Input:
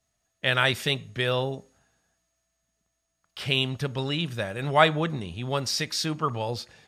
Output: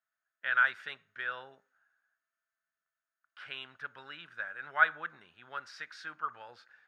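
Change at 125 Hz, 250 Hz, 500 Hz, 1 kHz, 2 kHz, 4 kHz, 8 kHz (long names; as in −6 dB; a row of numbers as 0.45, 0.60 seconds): −35.0 dB, −29.0 dB, −21.5 dB, −7.5 dB, −1.5 dB, −19.5 dB, below −25 dB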